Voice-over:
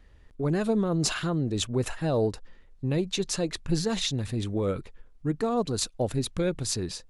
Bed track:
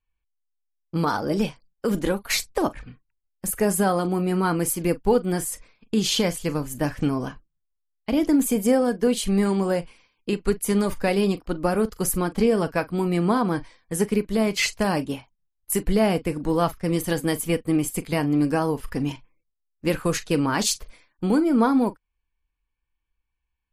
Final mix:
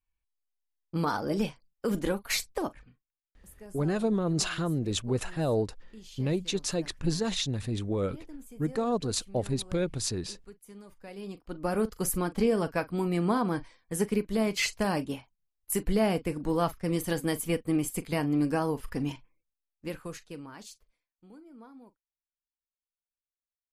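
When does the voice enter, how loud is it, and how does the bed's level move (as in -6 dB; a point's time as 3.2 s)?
3.35 s, -2.0 dB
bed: 2.49 s -5.5 dB
3.34 s -27 dB
10.93 s -27 dB
11.76 s -5.5 dB
19.34 s -5.5 dB
21.13 s -31.5 dB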